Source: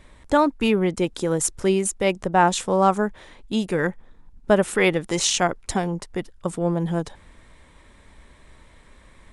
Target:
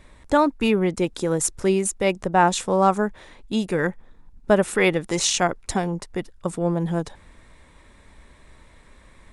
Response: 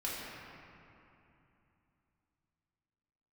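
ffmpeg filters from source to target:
-af "bandreject=f=3.1k:w=21"

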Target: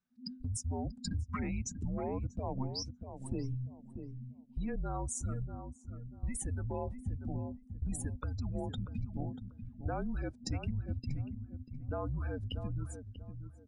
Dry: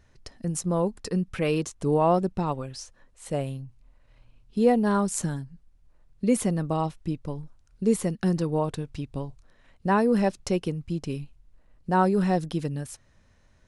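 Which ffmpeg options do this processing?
-filter_complex "[0:a]afftdn=nr=35:nf=-34,lowshelf=f=430:g=-6.5,acrossover=split=1600|6000[a][b][c];[a]acompressor=threshold=-31dB:ratio=4[d];[b]acompressor=threshold=-49dB:ratio=4[e];[c]acompressor=threshold=-47dB:ratio=4[f];[d][e][f]amix=inputs=3:normalize=0,alimiter=level_in=9dB:limit=-24dB:level=0:latency=1:release=58,volume=-9dB,acompressor=threshold=-44dB:ratio=2.5,afreqshift=-260,asplit=2[g][h];[h]adelay=639,lowpass=f=970:p=1,volume=-8dB,asplit=2[i][j];[j]adelay=639,lowpass=f=970:p=1,volume=0.28,asplit=2[k][l];[l]adelay=639,lowpass=f=970:p=1,volume=0.28[m];[i][k][m]amix=inputs=3:normalize=0[n];[g][n]amix=inputs=2:normalize=0,volume=9dB"

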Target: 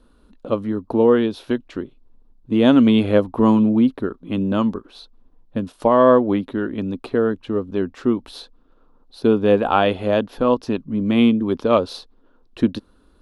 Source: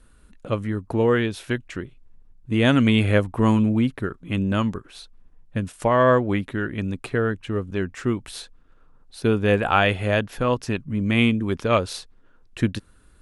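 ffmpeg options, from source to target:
-af "equalizer=f=125:t=o:w=1:g=-7,equalizer=f=250:t=o:w=1:g=9,equalizer=f=500:t=o:w=1:g=5,equalizer=f=1k:t=o:w=1:g=6,equalizer=f=2k:t=o:w=1:g=-8,equalizer=f=4k:t=o:w=1:g=7,equalizer=f=8k:t=o:w=1:g=-11,volume=-2dB"

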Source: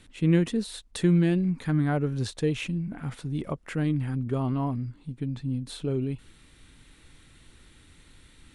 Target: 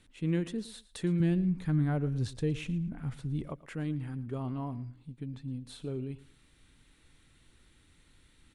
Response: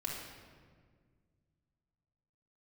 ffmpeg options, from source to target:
-filter_complex "[0:a]asettb=1/sr,asplit=3[a][b][c];[a]atrim=end=1.204[d];[b]atrim=start=1.2:end=3.46,asetpts=PTS-STARTPTS,afade=t=in:d=0.004:c=qsin,afade=t=out:st=2.256:d=0.004:c=qsin,lowshelf=f=170:g=11[e];[c]atrim=start=3.456[f];[d][e]acrossfade=d=0.004:c1=hsin:c2=qsin[g];[g][f]acrossfade=d=0.004:c1=qsin:c2=hsin,aecho=1:1:113|226:0.126|0.0302,volume=-8.5dB"

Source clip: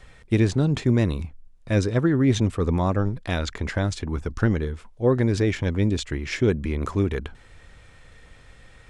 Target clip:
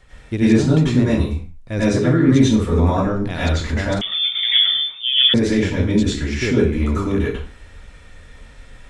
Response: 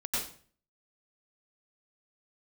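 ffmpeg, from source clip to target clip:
-filter_complex "[1:a]atrim=start_sample=2205,afade=t=out:st=0.35:d=0.01,atrim=end_sample=15876[a];[0:a][a]afir=irnorm=-1:irlink=0,asettb=1/sr,asplit=3[b][c][d];[b]atrim=end=4.014[e];[c]atrim=start=4.01:end=5.34,asetpts=PTS-STARTPTS,afade=t=in:d=0.004:c=qsin,afade=t=out:st=1.326:d=0.004:c=qsin,lowpass=f=3.1k:t=q:w=0.5098,lowpass=f=3.1k:t=q:w=0.6013,lowpass=f=3.1k:t=q:w=0.9,lowpass=f=3.1k:t=q:w=2.563,afreqshift=-3600[f];[d]atrim=start=5.336[g];[e][f]acrossfade=d=0.004:c1=hsin:c2=qsin[h];[h][g]acrossfade=d=0.004:c1=qsin:c2=hsin"

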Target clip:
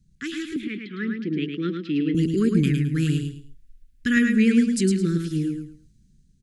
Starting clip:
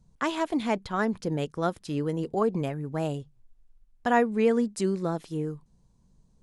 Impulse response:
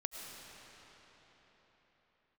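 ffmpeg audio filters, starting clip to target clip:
-filter_complex "[0:a]dynaudnorm=f=330:g=7:m=11.5dB,asuperstop=centerf=760:order=8:qfactor=0.6,asettb=1/sr,asplit=3[a][b][c];[a]atrim=end=0.564[d];[b]atrim=start=0.56:end=2.15,asetpts=PTS-STARTPTS,afade=t=in:d=0.004:c=qsin,afade=t=out:st=1.586:d=0.004:c=qsin,highpass=f=200:w=0.5412,highpass=f=200:w=1.3066,equalizer=f=240:t=q:w=4:g=-4,equalizer=f=820:t=q:w=4:g=-9,equalizer=f=1.5k:t=q:w=4:g=-7,lowpass=f=3.1k:w=0.5412,lowpass=f=3.1k:w=1.3066[e];[c]atrim=start=2.146[f];[d][e]acrossfade=d=0.004:c1=hsin:c2=qsin[g];[g][f]acrossfade=d=0.004:c1=qsin:c2=hsin,aecho=1:1:108|216|324:0.562|0.146|0.038"

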